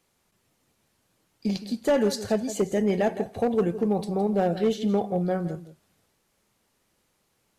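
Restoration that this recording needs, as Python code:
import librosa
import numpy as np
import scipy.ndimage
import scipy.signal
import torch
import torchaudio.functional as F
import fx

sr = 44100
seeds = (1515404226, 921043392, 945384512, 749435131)

y = fx.fix_declip(x, sr, threshold_db=-16.0)
y = fx.fix_echo_inverse(y, sr, delay_ms=165, level_db=-14.0)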